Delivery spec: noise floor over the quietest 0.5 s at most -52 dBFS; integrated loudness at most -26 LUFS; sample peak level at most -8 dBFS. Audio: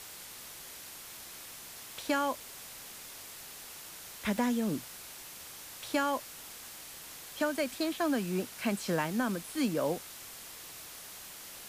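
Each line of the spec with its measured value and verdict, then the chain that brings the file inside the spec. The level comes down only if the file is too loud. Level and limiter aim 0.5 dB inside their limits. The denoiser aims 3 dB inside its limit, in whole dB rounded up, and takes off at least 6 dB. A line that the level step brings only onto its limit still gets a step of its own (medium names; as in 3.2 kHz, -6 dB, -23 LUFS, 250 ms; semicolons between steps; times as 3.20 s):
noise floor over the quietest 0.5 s -47 dBFS: fail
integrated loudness -36.0 LUFS: pass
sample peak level -18.5 dBFS: pass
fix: noise reduction 8 dB, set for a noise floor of -47 dBFS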